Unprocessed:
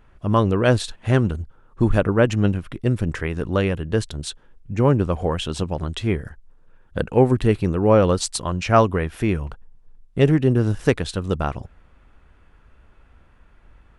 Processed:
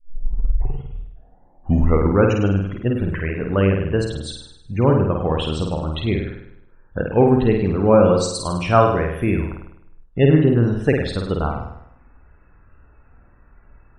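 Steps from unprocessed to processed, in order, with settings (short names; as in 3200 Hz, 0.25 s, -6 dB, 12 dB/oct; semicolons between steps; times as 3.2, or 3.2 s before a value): tape start at the beginning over 2.44 s; loudest bins only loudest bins 64; flutter echo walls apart 8.8 m, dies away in 0.76 s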